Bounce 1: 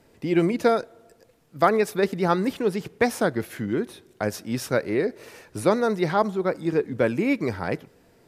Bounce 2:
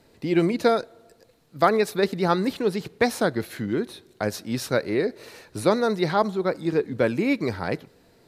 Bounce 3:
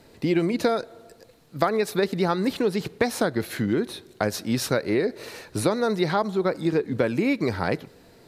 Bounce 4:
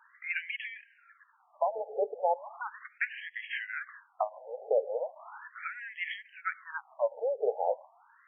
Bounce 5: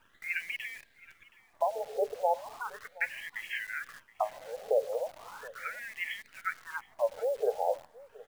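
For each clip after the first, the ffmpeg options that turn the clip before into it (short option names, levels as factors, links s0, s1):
-af "equalizer=f=4100:t=o:w=0.27:g=9"
-af "acompressor=threshold=0.0631:ratio=6,volume=1.78"
-af "alimiter=limit=0.224:level=0:latency=1:release=207,afftfilt=real='re*between(b*sr/1024,590*pow(2400/590,0.5+0.5*sin(2*PI*0.37*pts/sr))/1.41,590*pow(2400/590,0.5+0.5*sin(2*PI*0.37*pts/sr))*1.41)':imag='im*between(b*sr/1024,590*pow(2400/590,0.5+0.5*sin(2*PI*0.37*pts/sr))/1.41,590*pow(2400/590,0.5+0.5*sin(2*PI*0.37*pts/sr))*1.41)':win_size=1024:overlap=0.75,volume=1.5"
-af "acrusher=bits=9:dc=4:mix=0:aa=0.000001,aecho=1:1:722:0.0841"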